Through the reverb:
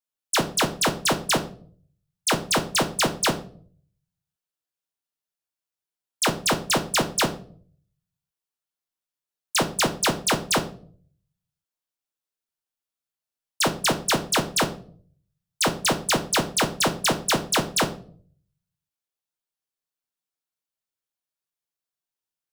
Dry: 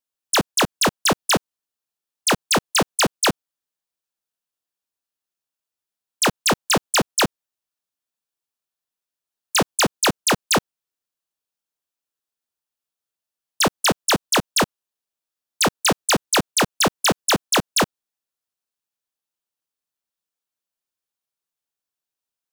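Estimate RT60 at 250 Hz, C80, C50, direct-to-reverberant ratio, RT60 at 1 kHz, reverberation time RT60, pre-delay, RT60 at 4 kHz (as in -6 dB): 0.70 s, 18.0 dB, 13.5 dB, 5.5 dB, 0.40 s, 0.50 s, 6 ms, 0.35 s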